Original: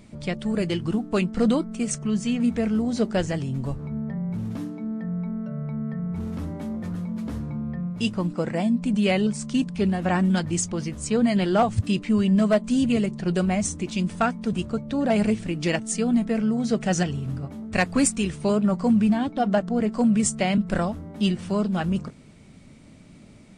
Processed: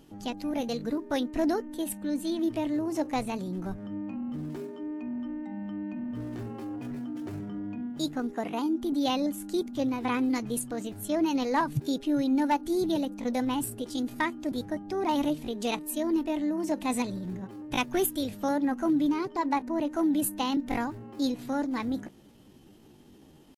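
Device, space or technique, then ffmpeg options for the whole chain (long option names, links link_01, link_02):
chipmunk voice: -af "asetrate=60591,aresample=44100,atempo=0.727827,volume=-6dB"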